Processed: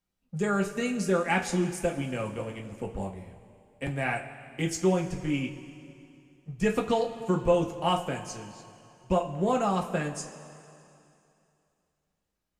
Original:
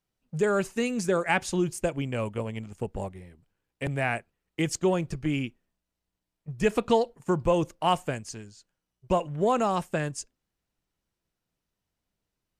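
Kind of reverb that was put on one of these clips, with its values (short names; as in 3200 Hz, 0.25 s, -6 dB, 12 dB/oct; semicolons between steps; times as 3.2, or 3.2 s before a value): two-slope reverb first 0.22 s, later 2.7 s, from -18 dB, DRR 0.5 dB; gain -4 dB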